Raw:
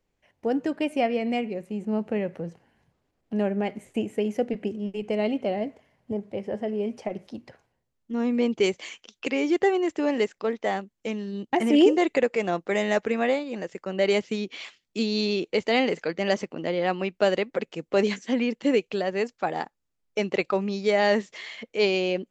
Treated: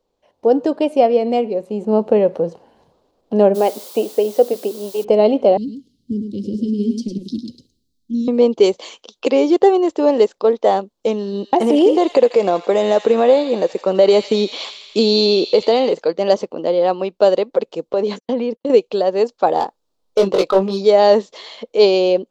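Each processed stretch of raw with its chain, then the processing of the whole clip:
3.54–5.03 HPF 320 Hz + added noise blue -43 dBFS
5.57–8.28 elliptic band-stop 270–3900 Hz, stop band 50 dB + echo 0.104 s -7 dB
11.16–15.93 compressor 3:1, threshold -24 dBFS + thin delay 83 ms, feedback 68%, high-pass 1800 Hz, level -7.5 dB
17.93–18.7 gate -39 dBFS, range -47 dB + high shelf 3900 Hz -8.5 dB + compressor 4:1, threshold -26 dBFS
19.59–20.85 hard clip -23.5 dBFS + doubler 21 ms -3.5 dB
whole clip: graphic EQ 125/250/500/1000/2000/4000 Hz -4/+3/+11/+9/-10/+10 dB; AGC; gain -1 dB

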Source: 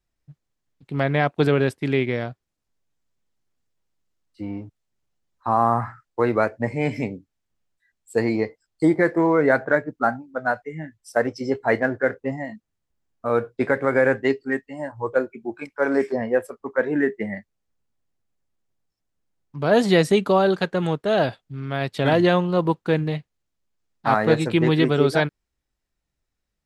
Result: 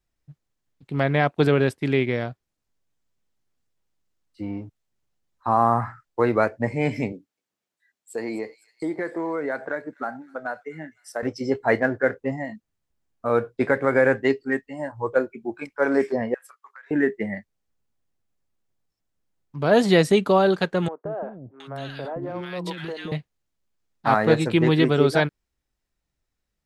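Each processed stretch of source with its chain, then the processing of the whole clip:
7.12–11.23 HPF 240 Hz + compressor 2.5:1, threshold -28 dBFS + thin delay 0.254 s, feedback 50%, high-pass 3800 Hz, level -11 dB
16.34–16.91 Chebyshev high-pass 1300 Hz, order 3 + compressor 8:1, threshold -42 dBFS
20.88–23.12 HPF 240 Hz 6 dB/oct + compressor 5:1, threshold -25 dBFS + three bands offset in time mids, lows, highs 0.17/0.72 s, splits 330/1300 Hz
whole clip: dry

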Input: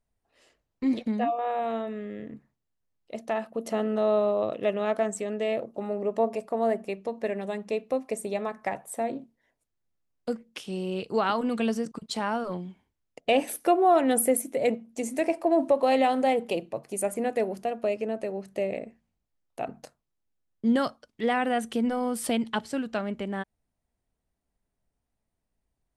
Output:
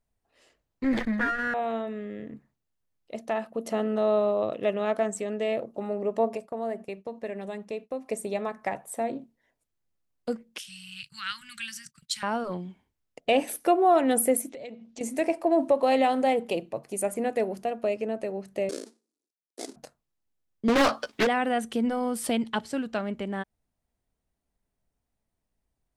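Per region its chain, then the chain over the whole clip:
0.84–1.54 minimum comb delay 0.61 ms + EQ curve 1200 Hz 0 dB, 1800 Hz +14 dB, 2800 Hz -4 dB + sustainer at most 75 dB/s
6.37–8.06 expander -42 dBFS + compressor 1.5:1, threshold -38 dBFS
10.58–12.23 elliptic band-stop 140–1600 Hz, stop band 60 dB + gate -56 dBFS, range -13 dB + tilt +2 dB/oct
14.49–15.01 LPF 7000 Hz 24 dB/oct + bell 3700 Hz +9 dB 1.1 oct + compressor 5:1, threshold -39 dBFS
18.69–19.76 half-waves squared off + elliptic band-pass 310–9900 Hz + band shelf 1400 Hz -15.5 dB 2.8 oct
20.68–21.27 overdrive pedal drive 30 dB, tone 3900 Hz, clips at -14.5 dBFS + doubler 14 ms -7 dB + Doppler distortion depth 0.76 ms
whole clip: dry

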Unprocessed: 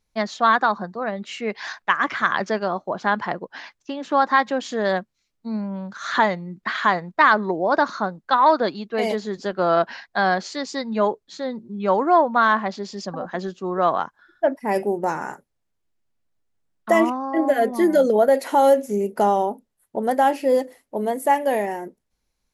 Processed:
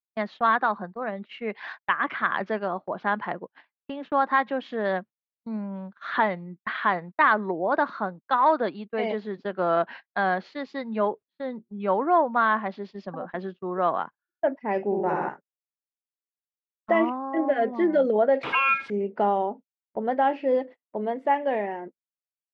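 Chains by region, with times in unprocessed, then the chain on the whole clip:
14.84–15.29 Butterworth band-stop 4600 Hz, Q 3.9 + bell 83 Hz +7.5 dB 1.7 oct + flutter echo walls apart 11.3 m, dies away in 1.3 s
18.43–18.9 switching spikes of -17.5 dBFS + ring modulator 1900 Hz + three-band squash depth 70%
whole clip: HPF 120 Hz 12 dB/oct; gate -34 dBFS, range -32 dB; LPF 3200 Hz 24 dB/oct; gain -4.5 dB

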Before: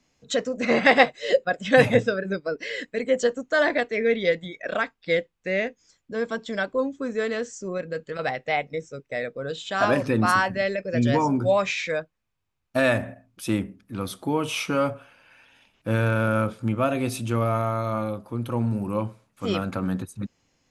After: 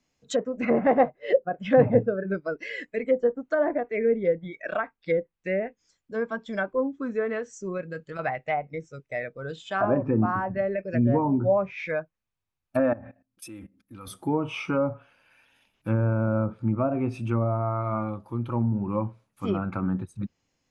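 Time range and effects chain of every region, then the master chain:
12.79–14.07 comb 3.8 ms, depth 45% + dynamic EQ 1500 Hz, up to +4 dB, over -37 dBFS, Q 0.83 + level quantiser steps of 19 dB
whole clip: spectral noise reduction 7 dB; treble ducked by the level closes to 810 Hz, closed at -19.5 dBFS; dynamic EQ 3900 Hz, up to -7 dB, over -52 dBFS, Q 1.4

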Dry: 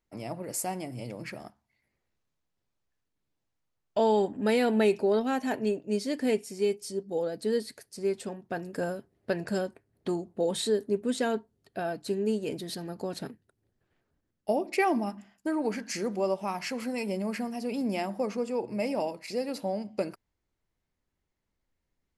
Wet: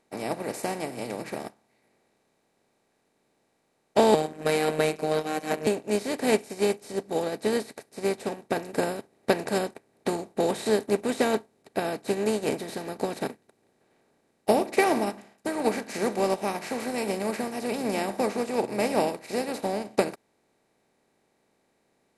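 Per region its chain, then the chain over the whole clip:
4.14–5.67 bell 1000 Hz +4 dB 1.1 oct + robotiser 155 Hz + Butterworth band-stop 870 Hz, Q 4.3
whole clip: per-bin compression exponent 0.4; upward expander 2.5:1, over -38 dBFS; gain +3 dB

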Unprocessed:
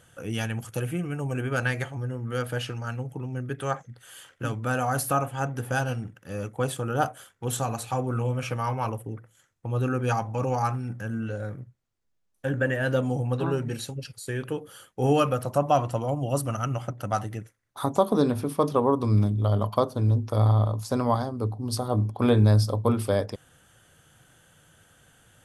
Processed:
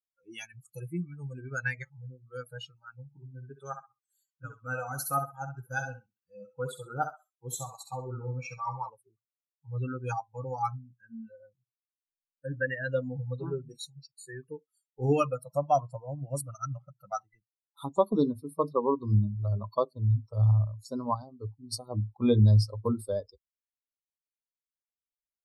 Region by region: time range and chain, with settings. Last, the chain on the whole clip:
3.01–8.89 bell 9300 Hz -7.5 dB 0.22 oct + thinning echo 65 ms, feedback 47%, high-pass 270 Hz, level -4 dB
whole clip: per-bin expansion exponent 2; notch 3100 Hz, Q 5.3; spectral noise reduction 22 dB

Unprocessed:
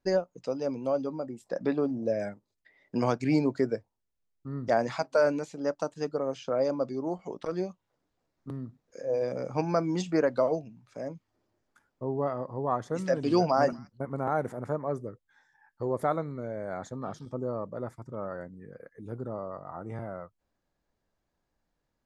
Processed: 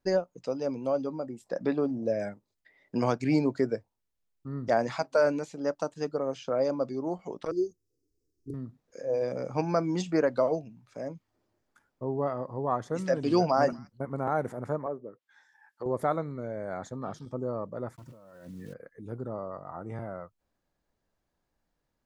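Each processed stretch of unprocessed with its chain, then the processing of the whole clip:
7.51–8.54 elliptic band-stop 420–5300 Hz + comb 2.6 ms, depth 79%
14.86–15.86 treble ducked by the level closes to 720 Hz, closed at -31.5 dBFS + HPF 210 Hz + tilt shelf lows -5 dB, about 750 Hz
17.94–18.74 block floating point 5-bit + negative-ratio compressor -47 dBFS + notch comb 410 Hz
whole clip: dry

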